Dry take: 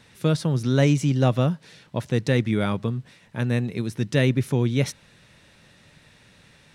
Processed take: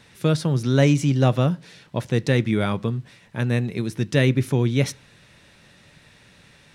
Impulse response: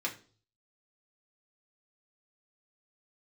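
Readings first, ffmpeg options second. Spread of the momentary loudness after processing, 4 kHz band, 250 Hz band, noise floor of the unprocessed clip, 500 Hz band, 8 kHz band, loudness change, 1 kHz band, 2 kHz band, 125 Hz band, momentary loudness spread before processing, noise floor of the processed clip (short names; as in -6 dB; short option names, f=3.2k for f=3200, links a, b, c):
11 LU, +2.0 dB, +1.5 dB, -55 dBFS, +1.5 dB, +1.5 dB, +1.5 dB, +2.0 dB, +2.0 dB, +1.5 dB, 11 LU, -53 dBFS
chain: -filter_complex "[0:a]asplit=2[a][b];[1:a]atrim=start_sample=2205[c];[b][c]afir=irnorm=-1:irlink=0,volume=-18dB[d];[a][d]amix=inputs=2:normalize=0,volume=1dB"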